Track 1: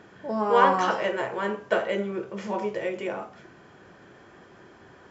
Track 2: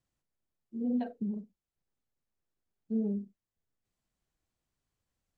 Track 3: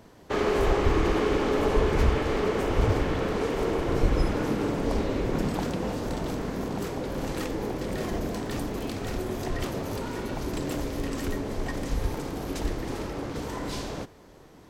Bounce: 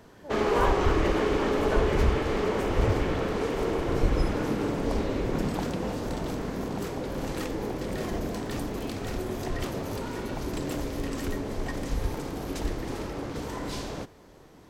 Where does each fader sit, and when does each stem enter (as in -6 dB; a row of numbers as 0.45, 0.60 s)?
-8.5 dB, off, -1.0 dB; 0.00 s, off, 0.00 s